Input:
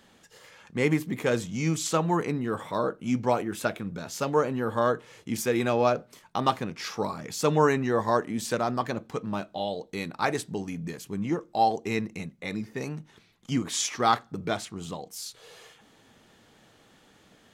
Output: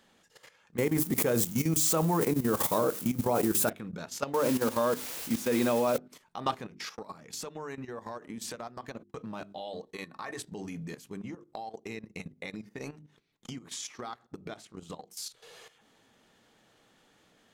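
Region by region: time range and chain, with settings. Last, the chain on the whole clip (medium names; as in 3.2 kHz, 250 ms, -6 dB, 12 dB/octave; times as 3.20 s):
0.78–3.70 s: zero-crossing glitches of -26 dBFS + peaking EQ 2.9 kHz -8.5 dB 2.8 oct + level flattener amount 70%
4.34–5.98 s: small resonant body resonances 250/540/960/3600 Hz, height 8 dB, ringing for 25 ms + word length cut 6-bit, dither triangular
6.65–9.19 s: gate -41 dBFS, range -32 dB + compression 12:1, threshold -32 dBFS
9.73–10.39 s: hum notches 50/100/150/200/250/300/350 Hz + compression 3:1, threshold -33 dBFS + small resonant body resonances 1.1/1.8 kHz, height 15 dB, ringing for 85 ms
11.21–15.08 s: transient shaper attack +7 dB, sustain -8 dB + compression 16:1, threshold -30 dBFS + feedback echo behind a low-pass 81 ms, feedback 53%, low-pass 540 Hz, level -23.5 dB
whole clip: peaking EQ 64 Hz -4.5 dB 2.2 oct; hum notches 50/100/150/200/250/300/350/400 Hz; level held to a coarse grid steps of 13 dB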